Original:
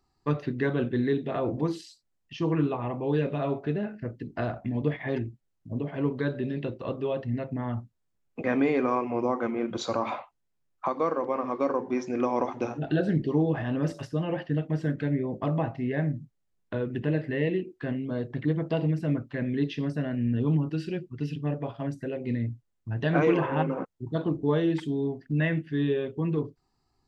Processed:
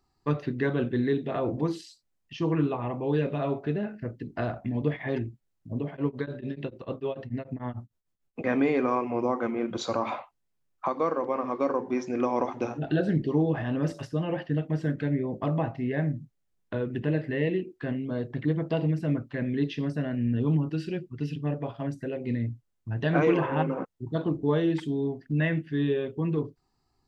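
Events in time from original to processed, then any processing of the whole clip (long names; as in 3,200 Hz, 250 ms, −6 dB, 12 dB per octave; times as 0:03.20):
0:05.90–0:08.44: tremolo along a rectified sine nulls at 6.8 Hz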